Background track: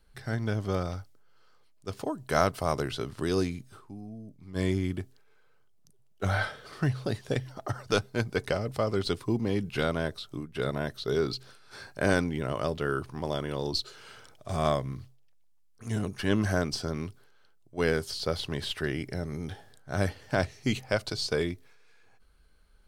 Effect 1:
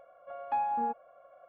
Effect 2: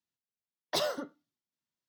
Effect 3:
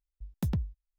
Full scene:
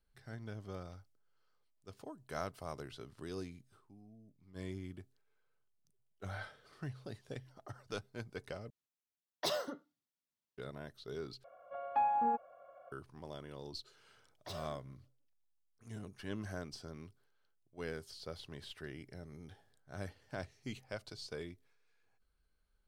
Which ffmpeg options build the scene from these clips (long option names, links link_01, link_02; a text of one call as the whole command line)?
ffmpeg -i bed.wav -i cue0.wav -i cue1.wav -filter_complex "[2:a]asplit=2[link_01][link_02];[0:a]volume=-16dB[link_03];[link_02]asplit=2[link_04][link_05];[link_05]adelay=162,lowpass=frequency=1300:poles=1,volume=-17dB,asplit=2[link_06][link_07];[link_07]adelay=162,lowpass=frequency=1300:poles=1,volume=0.3,asplit=2[link_08][link_09];[link_09]adelay=162,lowpass=frequency=1300:poles=1,volume=0.3[link_10];[link_04][link_06][link_08][link_10]amix=inputs=4:normalize=0[link_11];[link_03]asplit=3[link_12][link_13][link_14];[link_12]atrim=end=8.704[link_15];[link_01]atrim=end=1.88,asetpts=PTS-STARTPTS,volume=-5dB[link_16];[link_13]atrim=start=10.576:end=11.444[link_17];[1:a]atrim=end=1.48,asetpts=PTS-STARTPTS,volume=-1dB[link_18];[link_14]atrim=start=12.916[link_19];[link_11]atrim=end=1.88,asetpts=PTS-STARTPTS,volume=-17dB,afade=type=in:duration=0.004:curve=hsin,afade=type=out:start_time=1.876:duration=0.004:curve=hsin,adelay=13730[link_20];[link_15][link_16]acrossfade=duration=0.004:curve1=hsin:curve2=hsin[link_21];[link_21][link_17]acrossfade=duration=0.004:curve1=hsin:curve2=hsin[link_22];[link_22][link_18]acrossfade=duration=0.004:curve1=hsin:curve2=hsin[link_23];[link_23][link_19]acrossfade=duration=0.004:curve1=hsin:curve2=hsin[link_24];[link_24][link_20]amix=inputs=2:normalize=0" out.wav